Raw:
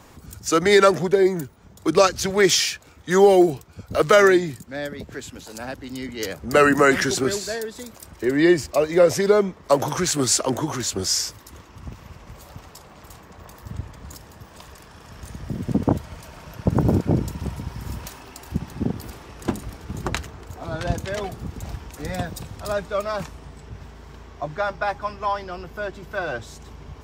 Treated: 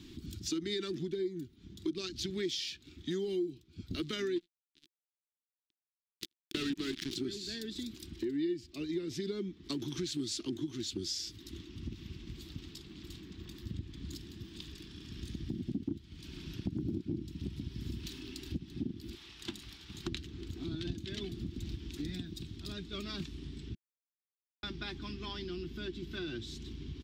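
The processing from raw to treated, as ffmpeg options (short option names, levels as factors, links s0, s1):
-filter_complex "[0:a]asettb=1/sr,asplit=3[s0][s1][s2];[s0]atrim=end=4.364[s3];[s1]atrim=start=4.36:end=7.16,asetpts=PTS-STARTPTS,afade=t=in:d=0.004:c=qsin,afade=t=out:st=2.796:d=0.004:c=qsin,acrusher=bits=2:mix=0:aa=0.5[s4];[s2]atrim=start=7.156[s5];[s3][s4]acrossfade=d=0.004:c1=hsin:c2=qsin[s6];[s6][s5]acrossfade=d=0.004:c1=qsin:c2=hsin,asettb=1/sr,asplit=3[s7][s8][s9];[s7]atrim=end=19.154[s10];[s8]atrim=start=19.15:end=20.07,asetpts=PTS-STARTPTS,afade=t=in:d=0.004:c=qsin,afade=t=out:st=0.916:d=0.004:c=qsin,lowshelf=f=500:t=q:w=1.5:g=-14[s11];[s9]atrim=start=20.066[s12];[s10][s11]acrossfade=d=0.004:c1=hsin:c2=qsin[s13];[s13][s12]acrossfade=d=0.004:c1=qsin:c2=hsin,asplit=5[s14][s15][s16][s17][s18];[s14]atrim=end=22.182[s19];[s15]atrim=start=22.178:end=22.932,asetpts=PTS-STARTPTS,volume=0.562[s20];[s16]atrim=start=22.928:end=23.75,asetpts=PTS-STARTPTS,afade=t=out:st=0.818:d=0.004:c=hsin[s21];[s17]atrim=start=23.75:end=24.63,asetpts=PTS-STARTPTS,volume=0[s22];[s18]atrim=start=24.63,asetpts=PTS-STARTPTS,afade=t=in:d=0.004:c=hsin[s23];[s19][s20]acrossfade=d=0.004:c1=hsin:c2=hsin[s24];[s21][s22][s23]concat=n=3:v=0:a=1[s25];[s24][s25]acrossfade=d=0.004:c1=hsin:c2=hsin,firequalizer=gain_entry='entry(130,0);entry(340,9);entry(520,-27);entry(1600,-10);entry(3500,8);entry(6200,-5);entry(9300,-10)':delay=0.05:min_phase=1,acompressor=threshold=0.0224:ratio=4,volume=0.668"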